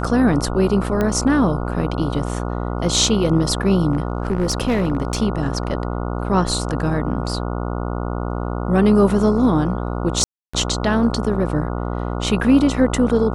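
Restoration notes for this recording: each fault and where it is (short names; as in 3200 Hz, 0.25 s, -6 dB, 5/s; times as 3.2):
buzz 60 Hz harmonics 24 -24 dBFS
1.01 pop -9 dBFS
3.92–5.22 clipped -14 dBFS
10.24–10.54 gap 0.295 s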